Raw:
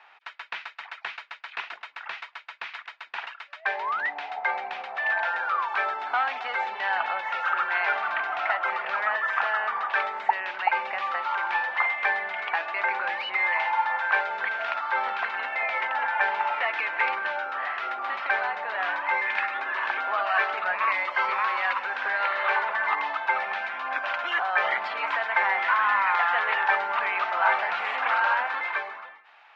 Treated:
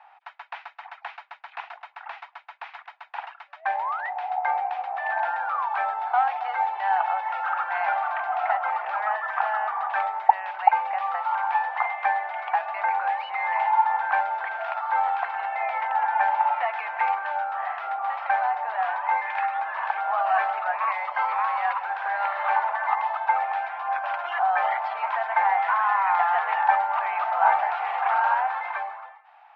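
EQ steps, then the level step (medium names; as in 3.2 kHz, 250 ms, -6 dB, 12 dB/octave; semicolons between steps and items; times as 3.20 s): resonant high-pass 770 Hz, resonance Q 4.9; treble shelf 2.7 kHz -8 dB; -4.5 dB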